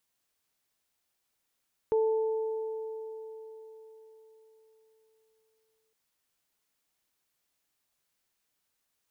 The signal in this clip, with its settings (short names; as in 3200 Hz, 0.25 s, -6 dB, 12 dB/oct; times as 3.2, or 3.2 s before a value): additive tone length 4.01 s, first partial 441 Hz, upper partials -13.5 dB, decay 4.39 s, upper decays 3.88 s, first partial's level -22 dB